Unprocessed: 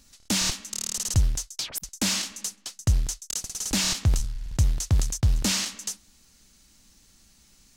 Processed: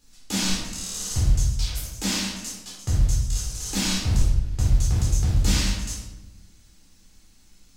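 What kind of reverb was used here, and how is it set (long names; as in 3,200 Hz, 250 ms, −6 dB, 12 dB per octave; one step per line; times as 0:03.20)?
rectangular room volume 420 cubic metres, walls mixed, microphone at 4 metres
level −9.5 dB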